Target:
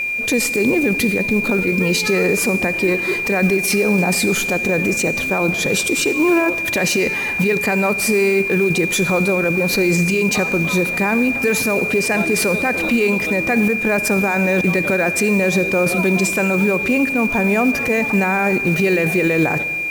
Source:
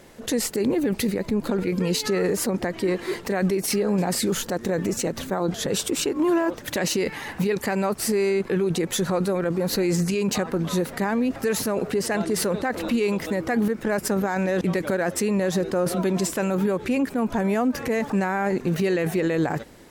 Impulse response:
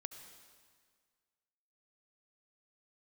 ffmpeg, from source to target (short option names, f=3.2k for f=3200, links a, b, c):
-filter_complex "[0:a]aeval=exprs='val(0)+0.0631*sin(2*PI*2400*n/s)':c=same,acrusher=bits=6:mode=log:mix=0:aa=0.000001,asplit=2[a][b];[1:a]atrim=start_sample=2205,asetrate=57330,aresample=44100[c];[b][c]afir=irnorm=-1:irlink=0,volume=5dB[d];[a][d]amix=inputs=2:normalize=0"